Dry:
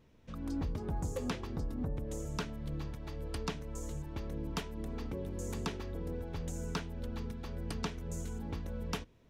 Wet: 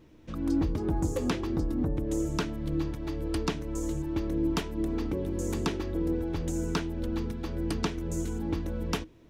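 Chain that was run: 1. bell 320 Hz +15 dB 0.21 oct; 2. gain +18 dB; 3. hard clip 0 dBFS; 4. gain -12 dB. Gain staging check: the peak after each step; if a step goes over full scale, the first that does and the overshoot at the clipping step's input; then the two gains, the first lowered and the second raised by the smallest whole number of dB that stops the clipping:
-23.0, -5.0, -5.0, -17.0 dBFS; no overload

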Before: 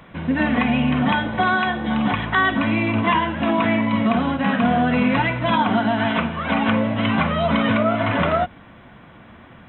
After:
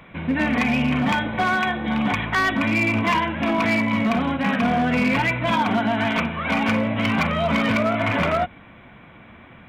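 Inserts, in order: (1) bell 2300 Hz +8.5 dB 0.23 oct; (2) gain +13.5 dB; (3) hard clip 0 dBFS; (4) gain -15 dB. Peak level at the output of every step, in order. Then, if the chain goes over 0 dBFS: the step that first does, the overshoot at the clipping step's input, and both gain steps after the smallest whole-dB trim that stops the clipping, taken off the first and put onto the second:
-5.5, +8.0, 0.0, -15.0 dBFS; step 2, 8.0 dB; step 2 +5.5 dB, step 4 -7 dB

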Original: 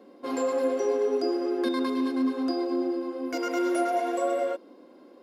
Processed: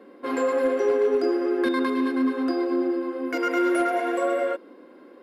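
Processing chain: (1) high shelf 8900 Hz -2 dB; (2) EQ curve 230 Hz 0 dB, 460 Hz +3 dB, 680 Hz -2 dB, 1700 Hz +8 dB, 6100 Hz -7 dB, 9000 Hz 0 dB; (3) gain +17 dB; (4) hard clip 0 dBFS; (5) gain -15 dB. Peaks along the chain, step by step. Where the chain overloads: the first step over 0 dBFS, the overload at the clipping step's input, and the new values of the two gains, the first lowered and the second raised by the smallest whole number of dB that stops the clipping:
-15.5, -14.0, +3.0, 0.0, -15.0 dBFS; step 3, 3.0 dB; step 3 +14 dB, step 5 -12 dB

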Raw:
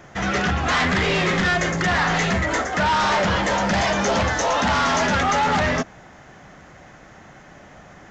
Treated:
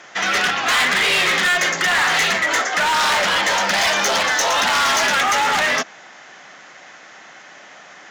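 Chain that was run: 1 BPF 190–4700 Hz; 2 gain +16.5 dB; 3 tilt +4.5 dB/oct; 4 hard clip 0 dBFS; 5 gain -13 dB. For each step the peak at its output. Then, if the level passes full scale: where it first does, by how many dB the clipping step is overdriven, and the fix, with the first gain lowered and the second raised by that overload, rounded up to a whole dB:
-11.0, +5.5, +8.5, 0.0, -13.0 dBFS; step 2, 8.5 dB; step 2 +7.5 dB, step 5 -4 dB

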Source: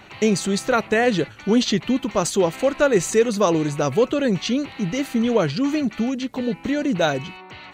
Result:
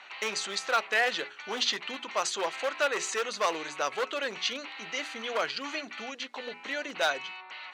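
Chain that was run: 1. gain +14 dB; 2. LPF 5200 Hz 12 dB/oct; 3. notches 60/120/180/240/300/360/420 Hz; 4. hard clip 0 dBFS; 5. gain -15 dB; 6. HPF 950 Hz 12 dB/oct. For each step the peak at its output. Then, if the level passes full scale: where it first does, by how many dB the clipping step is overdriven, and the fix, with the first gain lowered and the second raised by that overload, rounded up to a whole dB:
+9.0, +8.5, +8.5, 0.0, -15.0, -12.0 dBFS; step 1, 8.5 dB; step 1 +5 dB, step 5 -6 dB

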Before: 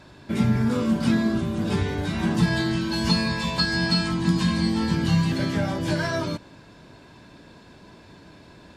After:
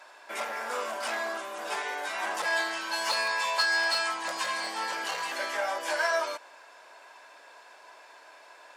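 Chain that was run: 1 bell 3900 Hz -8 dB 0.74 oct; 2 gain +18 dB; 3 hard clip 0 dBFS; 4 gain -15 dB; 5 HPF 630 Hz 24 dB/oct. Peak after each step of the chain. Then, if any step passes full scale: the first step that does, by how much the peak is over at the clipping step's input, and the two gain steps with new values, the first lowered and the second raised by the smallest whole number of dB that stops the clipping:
-8.5, +9.5, 0.0, -15.0, -13.5 dBFS; step 2, 9.5 dB; step 2 +8 dB, step 4 -5 dB

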